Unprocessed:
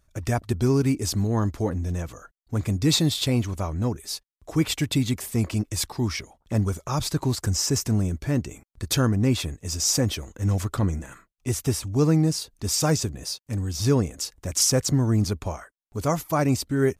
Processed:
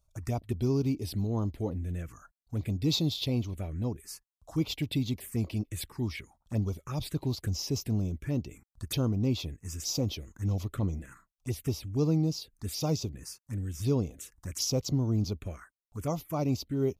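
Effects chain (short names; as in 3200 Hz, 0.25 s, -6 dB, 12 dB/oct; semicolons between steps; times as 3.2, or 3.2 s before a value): envelope phaser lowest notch 300 Hz, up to 1700 Hz, full sweep at -20.5 dBFS; gain -6.5 dB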